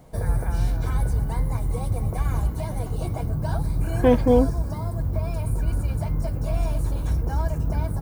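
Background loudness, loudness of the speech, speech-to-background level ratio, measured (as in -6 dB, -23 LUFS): -26.5 LUFS, -21.0 LUFS, 5.5 dB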